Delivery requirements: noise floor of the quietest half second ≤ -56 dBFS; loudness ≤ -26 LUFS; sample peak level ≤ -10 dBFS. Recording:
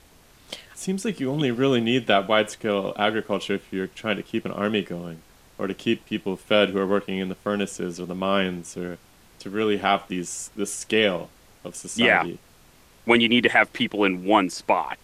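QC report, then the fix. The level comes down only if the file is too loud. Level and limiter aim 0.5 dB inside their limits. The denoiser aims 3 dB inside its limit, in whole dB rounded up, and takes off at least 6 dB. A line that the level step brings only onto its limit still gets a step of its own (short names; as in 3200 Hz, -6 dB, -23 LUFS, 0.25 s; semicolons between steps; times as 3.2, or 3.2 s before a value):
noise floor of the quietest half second -54 dBFS: fail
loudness -23.5 LUFS: fail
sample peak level -5.0 dBFS: fail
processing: gain -3 dB; limiter -10.5 dBFS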